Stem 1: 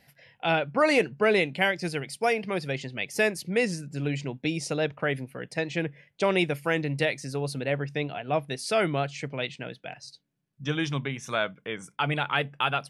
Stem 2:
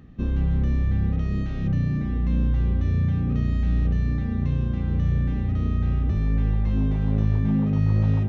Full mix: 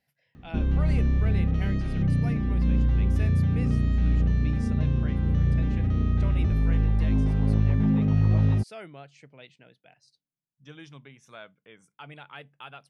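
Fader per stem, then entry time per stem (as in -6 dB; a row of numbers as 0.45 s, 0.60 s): -17.5 dB, -0.5 dB; 0.00 s, 0.35 s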